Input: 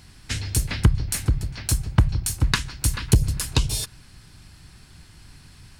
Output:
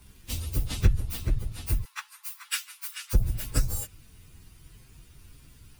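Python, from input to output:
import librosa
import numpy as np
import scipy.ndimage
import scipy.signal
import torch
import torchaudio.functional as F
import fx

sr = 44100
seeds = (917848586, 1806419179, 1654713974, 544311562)

y = fx.partial_stretch(x, sr, pct=127)
y = fx.steep_highpass(y, sr, hz=870.0, slope=96, at=(1.84, 3.13), fade=0.02)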